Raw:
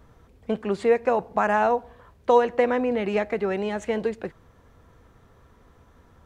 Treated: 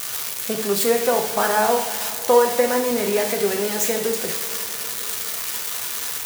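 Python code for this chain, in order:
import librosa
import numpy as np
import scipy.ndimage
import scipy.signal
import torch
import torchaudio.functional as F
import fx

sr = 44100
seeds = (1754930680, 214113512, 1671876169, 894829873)

y = x + 0.5 * 10.0 ** (-14.0 / 20.0) * np.diff(np.sign(x), prepend=np.sign(x[:1]))
y = scipy.signal.sosfilt(scipy.signal.butter(2, 90.0, 'highpass', fs=sr, output='sos'), y)
y = fx.rev_double_slope(y, sr, seeds[0], early_s=0.54, late_s=4.8, knee_db=-17, drr_db=2.0)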